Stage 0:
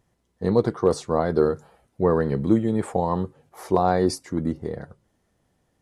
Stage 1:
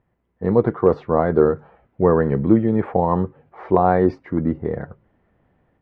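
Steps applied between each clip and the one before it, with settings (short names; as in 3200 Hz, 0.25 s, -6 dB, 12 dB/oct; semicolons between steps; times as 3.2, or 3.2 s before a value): LPF 2400 Hz 24 dB/oct; AGC gain up to 7 dB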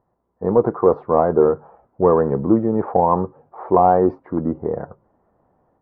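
overdrive pedal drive 11 dB, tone 1200 Hz, clips at -2 dBFS; resonant high shelf 1500 Hz -12 dB, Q 1.5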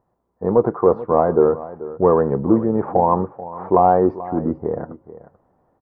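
echo 0.436 s -16 dB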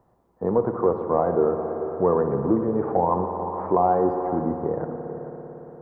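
spring tank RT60 2.9 s, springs 57 ms, chirp 60 ms, DRR 6.5 dB; three-band squash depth 40%; gain -6 dB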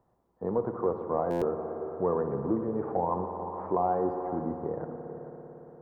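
stuck buffer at 1.3, samples 512, times 9; gain -7.5 dB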